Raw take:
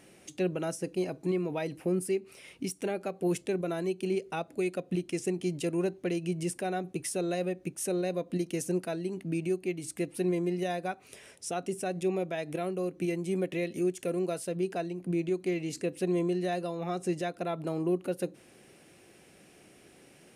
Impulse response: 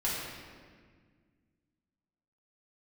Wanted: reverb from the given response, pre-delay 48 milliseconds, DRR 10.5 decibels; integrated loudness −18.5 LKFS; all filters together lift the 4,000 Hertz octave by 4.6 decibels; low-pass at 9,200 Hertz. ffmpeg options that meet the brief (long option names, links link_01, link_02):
-filter_complex "[0:a]lowpass=9200,equalizer=frequency=4000:width_type=o:gain=6,asplit=2[link_01][link_02];[1:a]atrim=start_sample=2205,adelay=48[link_03];[link_02][link_03]afir=irnorm=-1:irlink=0,volume=-18dB[link_04];[link_01][link_04]amix=inputs=2:normalize=0,volume=13.5dB"